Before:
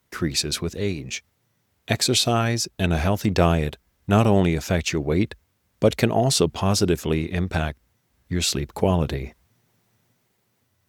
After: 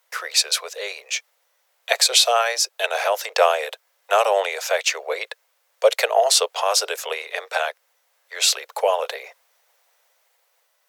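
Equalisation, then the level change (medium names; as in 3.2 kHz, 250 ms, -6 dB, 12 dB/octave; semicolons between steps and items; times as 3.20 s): steep high-pass 480 Hz 72 dB/octave; +5.5 dB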